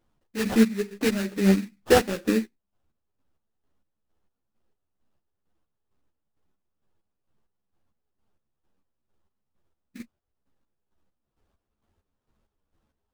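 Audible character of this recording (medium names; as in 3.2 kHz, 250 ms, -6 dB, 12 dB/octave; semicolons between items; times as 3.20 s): chopped level 2.2 Hz, depth 65%, duty 40%; aliases and images of a low sample rate 2.2 kHz, jitter 20%; a shimmering, thickened sound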